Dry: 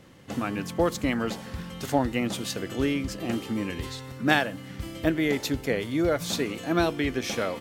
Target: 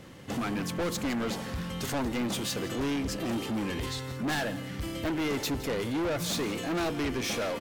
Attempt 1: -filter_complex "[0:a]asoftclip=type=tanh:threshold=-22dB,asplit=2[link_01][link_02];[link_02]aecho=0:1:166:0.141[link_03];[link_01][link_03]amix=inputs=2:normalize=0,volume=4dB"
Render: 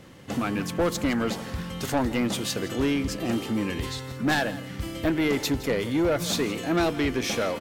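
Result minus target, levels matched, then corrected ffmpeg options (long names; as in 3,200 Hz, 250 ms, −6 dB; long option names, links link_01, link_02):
soft clipping: distortion −6 dB
-filter_complex "[0:a]asoftclip=type=tanh:threshold=-31.5dB,asplit=2[link_01][link_02];[link_02]aecho=0:1:166:0.141[link_03];[link_01][link_03]amix=inputs=2:normalize=0,volume=4dB"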